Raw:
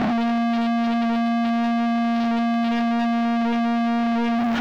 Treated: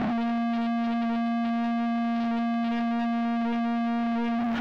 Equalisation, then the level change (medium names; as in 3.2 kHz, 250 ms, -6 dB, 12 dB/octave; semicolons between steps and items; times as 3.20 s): tone controls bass +2 dB, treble -5 dB; -6.5 dB